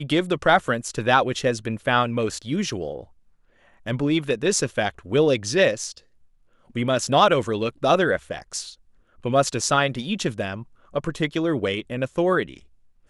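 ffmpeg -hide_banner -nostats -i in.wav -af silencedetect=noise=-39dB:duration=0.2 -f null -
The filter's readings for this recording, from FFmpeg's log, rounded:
silence_start: 3.04
silence_end: 3.86 | silence_duration: 0.82
silence_start: 5.99
silence_end: 6.70 | silence_duration: 0.72
silence_start: 8.74
silence_end: 9.25 | silence_duration: 0.51
silence_start: 10.63
silence_end: 10.94 | silence_duration: 0.30
silence_start: 12.58
silence_end: 13.09 | silence_duration: 0.51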